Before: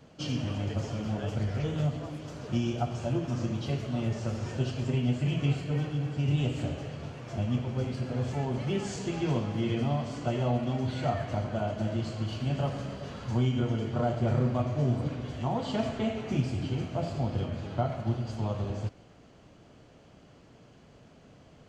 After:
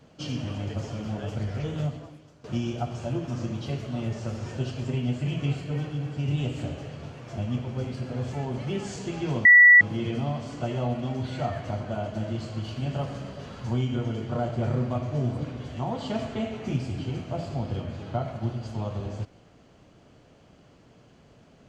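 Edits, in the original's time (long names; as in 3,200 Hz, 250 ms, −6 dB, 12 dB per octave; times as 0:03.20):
0:01.85–0:02.44: fade out quadratic, to −15.5 dB
0:09.45: insert tone 1,950 Hz −9.5 dBFS 0.36 s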